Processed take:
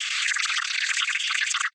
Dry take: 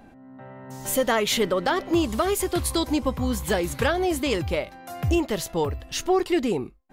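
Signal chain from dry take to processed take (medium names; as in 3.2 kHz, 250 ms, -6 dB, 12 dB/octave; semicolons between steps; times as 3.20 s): rattle on loud lows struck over -34 dBFS, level -25 dBFS; steep high-pass 390 Hz 96 dB/octave; compressor with a negative ratio -24 dBFS, ratio -0.5; wide varispeed 3.96×; noise-vocoded speech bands 16; swell ahead of each attack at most 21 dB/s; trim +2.5 dB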